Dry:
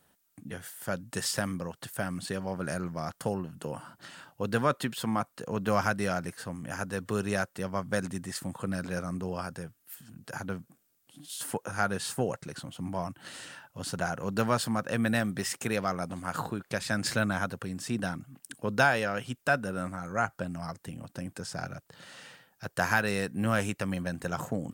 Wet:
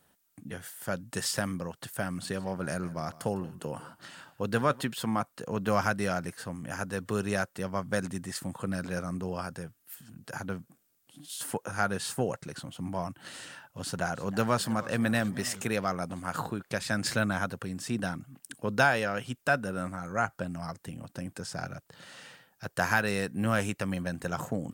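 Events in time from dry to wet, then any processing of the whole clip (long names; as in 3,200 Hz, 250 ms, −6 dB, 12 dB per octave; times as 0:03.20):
0:02.06–0:04.81: single-tap delay 153 ms −19 dB
0:13.46–0:15.62: feedback echo with a swinging delay time 317 ms, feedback 58%, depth 165 cents, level −18 dB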